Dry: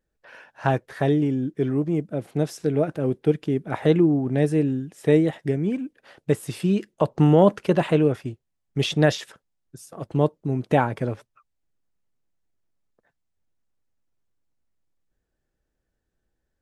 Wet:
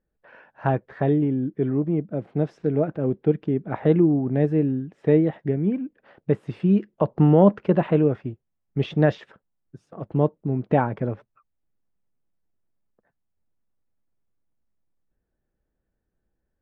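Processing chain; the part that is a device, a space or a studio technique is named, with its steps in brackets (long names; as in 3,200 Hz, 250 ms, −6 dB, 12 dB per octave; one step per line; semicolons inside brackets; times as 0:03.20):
phone in a pocket (low-pass filter 3,000 Hz 12 dB per octave; parametric band 200 Hz +4 dB 0.31 octaves; high-shelf EQ 2,400 Hz −11 dB)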